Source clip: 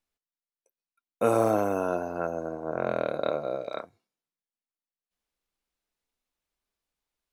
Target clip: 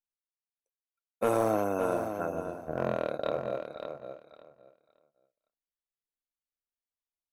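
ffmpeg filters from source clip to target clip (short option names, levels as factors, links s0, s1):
-filter_complex "[0:a]agate=range=0.178:threshold=0.0316:ratio=16:detection=peak,asettb=1/sr,asplit=3[s0][s1][s2];[s0]atrim=end=2.344[s3];[s1]atrim=start=2.34:end=2.96,asetpts=PTS-STARTPTS,afade=t=in:d=0.004:c=qsin,afade=t=out:st=0.616:d=0.004:c=qsin,lowshelf=f=240:g=8.5[s4];[s2]atrim=start=2.956[s5];[s3][s4]acrossfade=d=0.004:c1=hsin:c2=qsin[s6];[s6][s5]acrossfade=d=0.004:c1=qsin:c2=hsin,aeval=exprs='clip(val(0),-1,0.141)':c=same,equalizer=f=12000:t=o:w=0.24:g=6,asplit=2[s7][s8];[s8]aecho=0:1:565|1130|1695:0.398|0.0717|0.0129[s9];[s7][s9]amix=inputs=2:normalize=0,volume=0.708"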